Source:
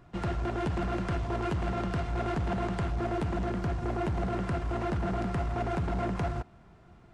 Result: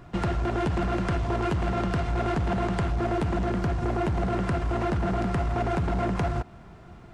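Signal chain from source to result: compression, threshold -32 dBFS, peak gain reduction 4.5 dB; trim +8.5 dB

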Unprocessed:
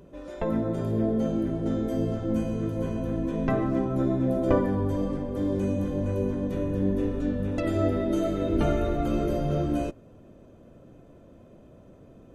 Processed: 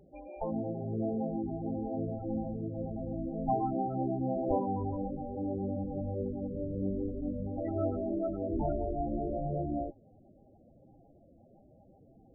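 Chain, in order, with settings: small resonant body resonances 800/2400 Hz, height 17 dB, ringing for 40 ms; loudest bins only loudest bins 16; trim -8 dB

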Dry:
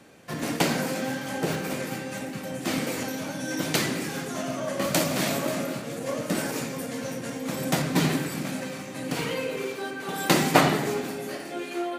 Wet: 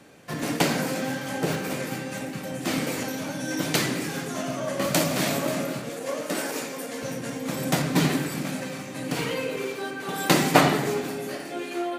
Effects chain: 5.89–7.03 s: high-pass 300 Hz 12 dB/octave; reverberation RT60 0.95 s, pre-delay 7 ms, DRR 17.5 dB; trim +1 dB

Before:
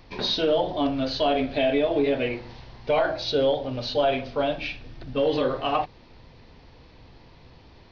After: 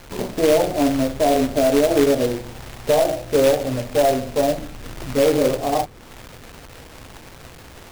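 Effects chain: inverse Chebyshev low-pass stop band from 3.4 kHz, stop band 70 dB; companded quantiser 4-bit; tape noise reduction on one side only encoder only; trim +6.5 dB

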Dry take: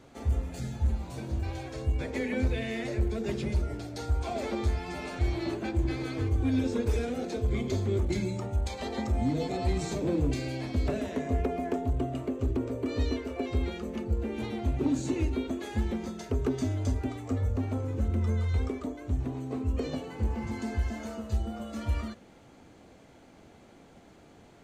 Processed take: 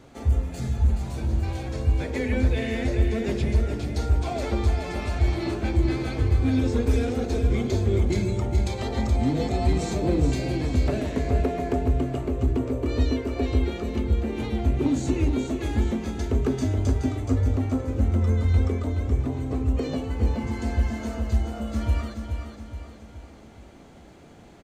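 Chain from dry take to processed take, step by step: bass shelf 130 Hz +3.5 dB; feedback delay 423 ms, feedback 47%, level -7 dB; trim +3.5 dB

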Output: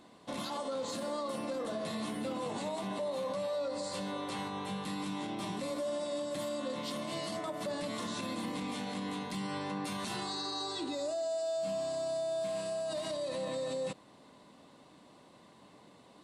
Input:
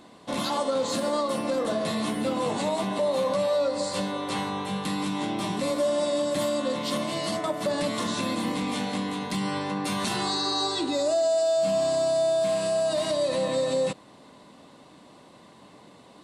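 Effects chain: peak limiter -22 dBFS, peak gain reduction 6 dB; trim -7 dB

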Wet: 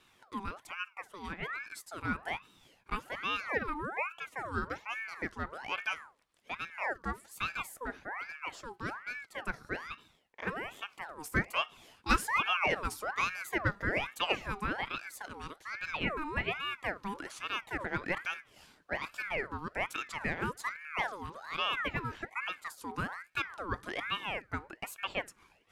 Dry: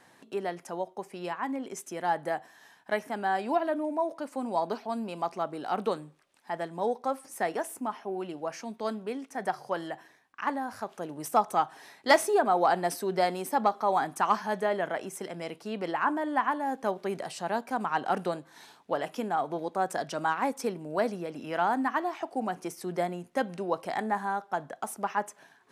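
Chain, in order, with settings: ring modulator with a swept carrier 1.3 kHz, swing 55%, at 1.2 Hz; trim -3.5 dB

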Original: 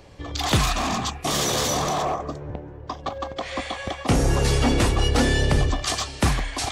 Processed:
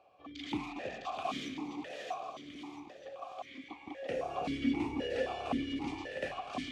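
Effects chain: 1.48–3.70 s: compression, threshold -30 dBFS, peak gain reduction 9.5 dB; two-band feedback delay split 730 Hz, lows 320 ms, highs 657 ms, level -3 dB; stepped vowel filter 3.8 Hz; trim -3.5 dB

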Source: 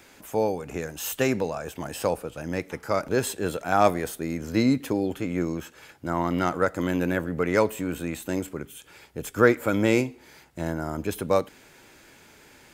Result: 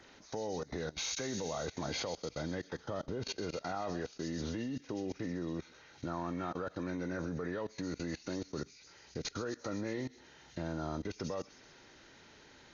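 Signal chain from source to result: knee-point frequency compression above 1.3 kHz 1.5:1; 2.85–3.30 s: tilt shelf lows +4.5 dB, about 690 Hz; peak limiter -15 dBFS, peak gain reduction 9 dB; compression 3:1, threshold -35 dBFS, peak gain reduction 11.5 dB; saturation -21 dBFS, distortion -28 dB; on a send: feedback echo behind a high-pass 129 ms, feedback 71%, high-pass 4.1 kHz, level -4 dB; on the sum: level held to a coarse grid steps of 21 dB; trim +4.5 dB

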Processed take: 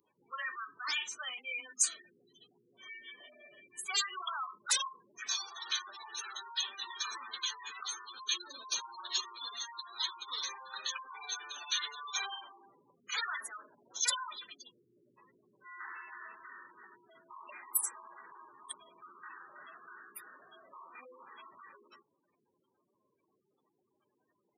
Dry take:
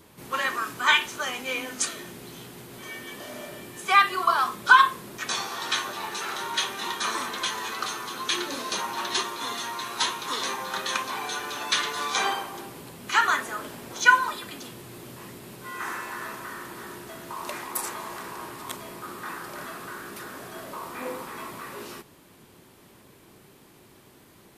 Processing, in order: wavefolder -18.5 dBFS; spectral gate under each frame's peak -10 dB strong; differentiator; trim +3 dB

